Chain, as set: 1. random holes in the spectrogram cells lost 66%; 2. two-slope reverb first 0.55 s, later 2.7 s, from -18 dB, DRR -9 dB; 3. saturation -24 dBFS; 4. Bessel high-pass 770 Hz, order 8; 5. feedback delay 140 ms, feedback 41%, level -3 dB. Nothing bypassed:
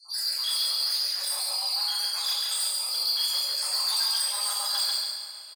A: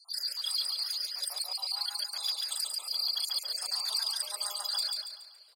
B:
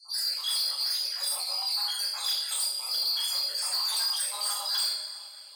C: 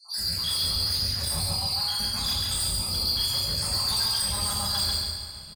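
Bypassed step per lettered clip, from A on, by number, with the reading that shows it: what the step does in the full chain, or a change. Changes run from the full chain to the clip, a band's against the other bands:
2, 500 Hz band +1.5 dB; 5, loudness change -2.0 LU; 4, 500 Hz band +6.0 dB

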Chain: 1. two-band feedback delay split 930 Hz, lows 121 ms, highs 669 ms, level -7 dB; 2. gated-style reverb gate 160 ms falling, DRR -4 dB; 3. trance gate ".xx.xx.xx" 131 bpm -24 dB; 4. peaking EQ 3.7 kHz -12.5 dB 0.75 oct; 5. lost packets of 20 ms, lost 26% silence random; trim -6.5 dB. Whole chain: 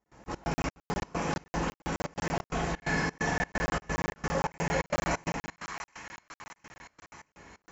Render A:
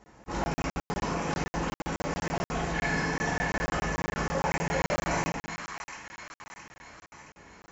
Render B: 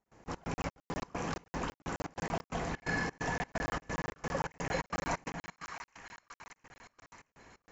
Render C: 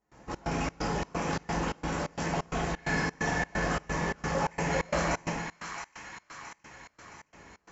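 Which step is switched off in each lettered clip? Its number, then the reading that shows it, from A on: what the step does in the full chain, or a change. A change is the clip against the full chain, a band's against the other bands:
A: 3, crest factor change -1.5 dB; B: 2, loudness change -5.0 LU; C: 5, momentary loudness spread change -1 LU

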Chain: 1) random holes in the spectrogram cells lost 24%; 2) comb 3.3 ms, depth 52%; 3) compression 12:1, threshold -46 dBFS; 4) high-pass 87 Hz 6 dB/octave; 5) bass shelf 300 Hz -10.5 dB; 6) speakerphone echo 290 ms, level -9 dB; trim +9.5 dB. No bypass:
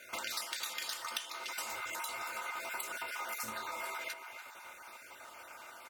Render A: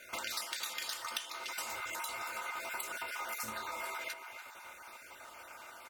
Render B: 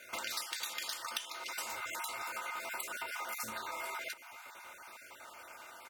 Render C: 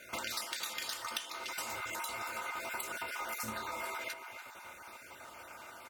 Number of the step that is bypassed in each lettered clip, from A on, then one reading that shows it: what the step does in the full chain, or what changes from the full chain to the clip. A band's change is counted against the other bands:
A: 4, 125 Hz band +2.0 dB; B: 6, echo-to-direct -18.5 dB to none; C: 5, 125 Hz band +8.5 dB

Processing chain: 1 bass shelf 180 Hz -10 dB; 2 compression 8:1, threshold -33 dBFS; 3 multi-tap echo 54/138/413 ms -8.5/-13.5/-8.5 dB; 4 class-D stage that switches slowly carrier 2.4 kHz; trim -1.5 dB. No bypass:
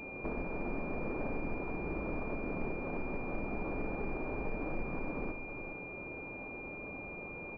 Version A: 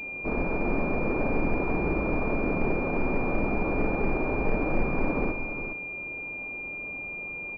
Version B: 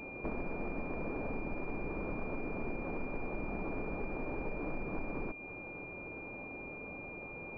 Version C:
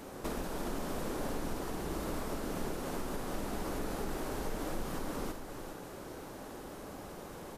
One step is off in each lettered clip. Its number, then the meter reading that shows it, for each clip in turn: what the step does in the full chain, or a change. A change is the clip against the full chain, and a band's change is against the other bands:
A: 2, momentary loudness spread change +1 LU; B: 3, loudness change -1.0 LU; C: 4, 2 kHz band -5.5 dB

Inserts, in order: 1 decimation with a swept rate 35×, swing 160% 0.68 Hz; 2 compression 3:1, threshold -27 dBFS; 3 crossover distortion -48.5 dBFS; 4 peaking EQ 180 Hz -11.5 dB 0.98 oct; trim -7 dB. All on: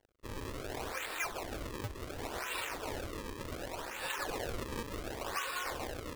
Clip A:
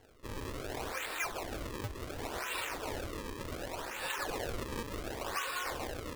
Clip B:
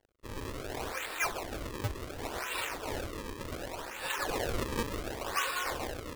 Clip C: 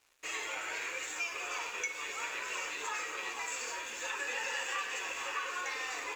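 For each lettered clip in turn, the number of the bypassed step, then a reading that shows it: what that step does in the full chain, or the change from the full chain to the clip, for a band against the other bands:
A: 3, distortion -22 dB; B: 2, momentary loudness spread change +2 LU; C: 1, 250 Hz band -15.0 dB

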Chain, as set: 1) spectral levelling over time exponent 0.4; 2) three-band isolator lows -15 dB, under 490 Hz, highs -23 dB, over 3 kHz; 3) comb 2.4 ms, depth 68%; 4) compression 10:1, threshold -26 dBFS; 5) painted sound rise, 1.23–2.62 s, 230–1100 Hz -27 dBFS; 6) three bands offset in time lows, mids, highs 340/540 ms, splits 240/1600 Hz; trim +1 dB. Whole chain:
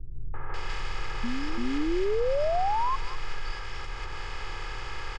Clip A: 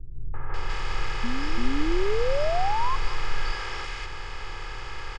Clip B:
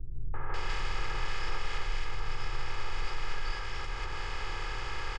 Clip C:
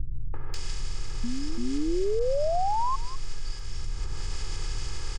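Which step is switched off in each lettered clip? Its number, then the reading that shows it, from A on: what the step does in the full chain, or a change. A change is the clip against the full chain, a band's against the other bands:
4, mean gain reduction 3.5 dB; 5, 250 Hz band -18.0 dB; 2, 2 kHz band -9.5 dB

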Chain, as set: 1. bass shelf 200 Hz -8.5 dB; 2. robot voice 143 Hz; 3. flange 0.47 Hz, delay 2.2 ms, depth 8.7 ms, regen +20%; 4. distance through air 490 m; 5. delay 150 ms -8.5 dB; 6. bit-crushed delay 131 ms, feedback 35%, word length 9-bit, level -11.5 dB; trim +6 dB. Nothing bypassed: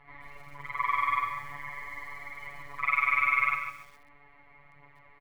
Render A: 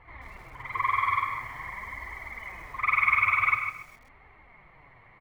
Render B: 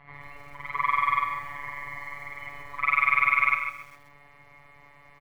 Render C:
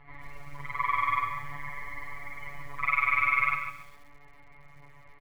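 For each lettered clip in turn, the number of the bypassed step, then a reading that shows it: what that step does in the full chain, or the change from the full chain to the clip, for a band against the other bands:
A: 2, 125 Hz band +5.0 dB; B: 3, loudness change +3.5 LU; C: 1, 125 Hz band +6.5 dB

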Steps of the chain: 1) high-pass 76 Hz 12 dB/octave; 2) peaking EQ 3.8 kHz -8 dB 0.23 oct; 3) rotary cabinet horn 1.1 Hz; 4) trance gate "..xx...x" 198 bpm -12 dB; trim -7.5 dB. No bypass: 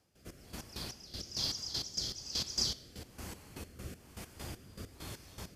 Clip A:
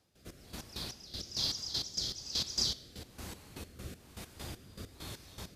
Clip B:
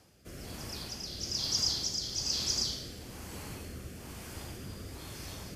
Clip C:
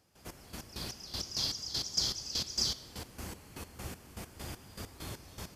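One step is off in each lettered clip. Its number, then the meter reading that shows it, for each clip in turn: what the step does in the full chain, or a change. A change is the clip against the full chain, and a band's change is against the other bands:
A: 2, 4 kHz band +1.5 dB; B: 4, 8 kHz band +2.0 dB; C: 3, loudness change +2.5 LU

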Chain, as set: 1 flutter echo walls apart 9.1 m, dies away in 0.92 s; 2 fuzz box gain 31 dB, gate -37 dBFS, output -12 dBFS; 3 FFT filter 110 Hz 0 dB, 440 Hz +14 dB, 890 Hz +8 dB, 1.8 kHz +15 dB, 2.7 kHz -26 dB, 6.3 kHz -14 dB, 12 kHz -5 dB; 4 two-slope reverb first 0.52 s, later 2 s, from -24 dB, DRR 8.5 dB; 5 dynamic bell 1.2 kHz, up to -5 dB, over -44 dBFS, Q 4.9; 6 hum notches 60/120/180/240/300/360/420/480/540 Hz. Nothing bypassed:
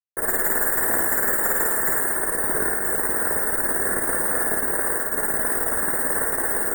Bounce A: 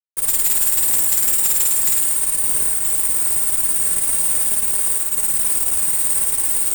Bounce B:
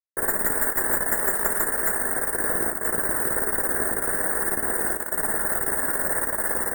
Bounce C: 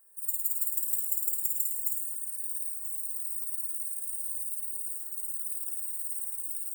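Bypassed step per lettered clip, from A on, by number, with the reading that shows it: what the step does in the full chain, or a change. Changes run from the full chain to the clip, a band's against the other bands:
3, 8 kHz band +18.5 dB; 1, loudness change -2.0 LU; 2, distortion -8 dB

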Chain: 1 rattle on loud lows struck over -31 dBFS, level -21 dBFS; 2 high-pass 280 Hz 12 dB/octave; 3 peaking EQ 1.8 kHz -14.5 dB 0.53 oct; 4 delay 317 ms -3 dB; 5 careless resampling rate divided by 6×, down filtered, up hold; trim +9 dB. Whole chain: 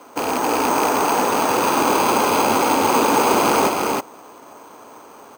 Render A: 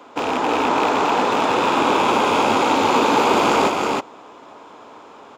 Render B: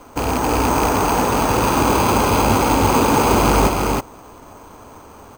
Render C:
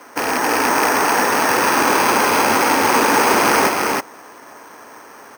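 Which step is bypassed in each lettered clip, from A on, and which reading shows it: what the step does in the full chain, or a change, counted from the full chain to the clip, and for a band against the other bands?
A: 5, 8 kHz band -8.5 dB; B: 2, 125 Hz band +14.5 dB; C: 3, 2 kHz band +7.0 dB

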